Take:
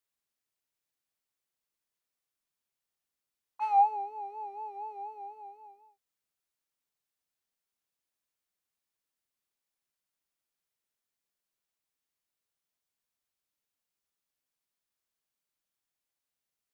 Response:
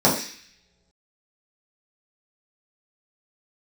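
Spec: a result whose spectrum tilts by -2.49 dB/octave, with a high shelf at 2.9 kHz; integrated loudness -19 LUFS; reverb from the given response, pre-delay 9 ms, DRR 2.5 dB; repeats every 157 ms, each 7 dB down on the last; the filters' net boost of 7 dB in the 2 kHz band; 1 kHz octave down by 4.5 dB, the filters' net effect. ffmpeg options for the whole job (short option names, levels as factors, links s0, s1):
-filter_complex "[0:a]equalizer=f=1000:t=o:g=-8,equalizer=f=2000:t=o:g=6.5,highshelf=f=2900:g=8,aecho=1:1:157|314|471|628|785:0.447|0.201|0.0905|0.0407|0.0183,asplit=2[s0][s1];[1:a]atrim=start_sample=2205,adelay=9[s2];[s1][s2]afir=irnorm=-1:irlink=0,volume=0.075[s3];[s0][s3]amix=inputs=2:normalize=0,volume=5.62"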